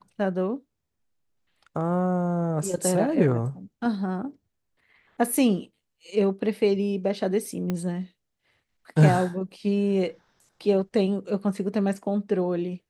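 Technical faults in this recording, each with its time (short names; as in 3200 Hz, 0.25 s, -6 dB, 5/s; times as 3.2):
7.7 pop -15 dBFS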